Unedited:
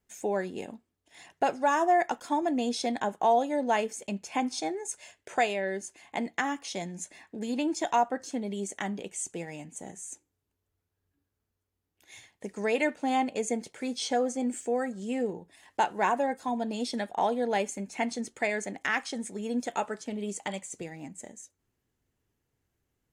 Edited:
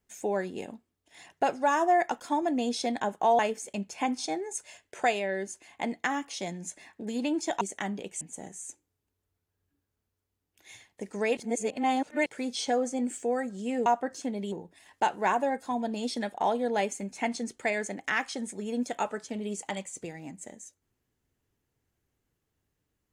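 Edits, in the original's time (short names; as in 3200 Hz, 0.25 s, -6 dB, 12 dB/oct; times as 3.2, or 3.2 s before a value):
3.39–3.73 cut
7.95–8.61 move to 15.29
9.21–9.64 cut
12.8–13.69 reverse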